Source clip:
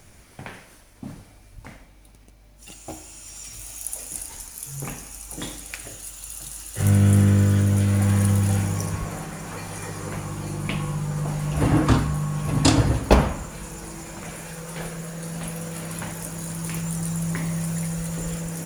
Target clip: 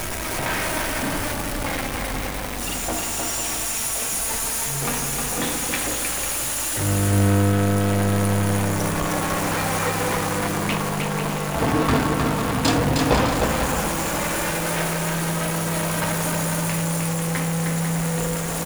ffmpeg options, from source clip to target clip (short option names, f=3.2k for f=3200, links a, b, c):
-filter_complex "[0:a]aeval=exprs='val(0)+0.5*0.126*sgn(val(0))':c=same,lowshelf=f=360:g=-8.5,asplit=2[a][b];[b]adynamicsmooth=sensitivity=2:basefreq=1.2k,volume=0.5dB[c];[a][c]amix=inputs=2:normalize=0,flanger=delay=3.1:depth=1.4:regen=62:speed=0.13:shape=sinusoidal,asoftclip=type=tanh:threshold=-11.5dB,asplit=2[d][e];[e]aecho=0:1:310|496|607.6|674.6|714.7:0.631|0.398|0.251|0.158|0.1[f];[d][f]amix=inputs=2:normalize=0"